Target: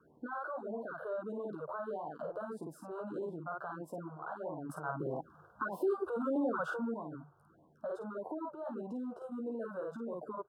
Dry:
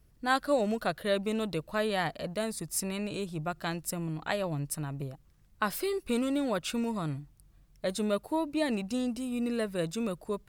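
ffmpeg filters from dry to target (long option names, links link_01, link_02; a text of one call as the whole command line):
ffmpeg -i in.wav -filter_complex "[0:a]aecho=1:1:13|52:0.596|0.708,acompressor=threshold=-37dB:ratio=6,asoftclip=type=tanh:threshold=-29.5dB,highshelf=frequency=2000:width_type=q:width=3:gain=-11,alimiter=level_in=15.5dB:limit=-24dB:level=0:latency=1:release=23,volume=-15.5dB,asuperstop=centerf=2100:order=8:qfactor=1.6,asettb=1/sr,asplit=3[link_01][link_02][link_03];[link_01]atrim=end=4.694[link_04];[link_02]atrim=start=4.69:end=6.94,asetpts=PTS-STARTPTS,afade=type=in:duration=0.004:curve=qsin,afade=type=out:start_time=2.246:duration=0.004:curve=qsin,acontrast=69[link_05];[link_03]atrim=start=6.936[link_06];[link_04][link_05]acrossfade=duration=0.004:curve1=hsin:curve2=qsin[link_07];[link_07][link_06]acrossfade=duration=0.004:curve1=qsin:curve2=hsin,highpass=120,acrossover=split=230 2200:gain=0.112 1 0.1[link_08][link_09][link_10];[link_08][link_09][link_10]amix=inputs=3:normalize=0,afftfilt=real='re*(1-between(b*sr/1024,220*pow(1600/220,0.5+0.5*sin(2*PI*1.6*pts/sr))/1.41,220*pow(1600/220,0.5+0.5*sin(2*PI*1.6*pts/sr))*1.41))':imag='im*(1-between(b*sr/1024,220*pow(1600/220,0.5+0.5*sin(2*PI*1.6*pts/sr))/1.41,220*pow(1600/220,0.5+0.5*sin(2*PI*1.6*pts/sr))*1.41))':win_size=1024:overlap=0.75,volume=9dB" out.wav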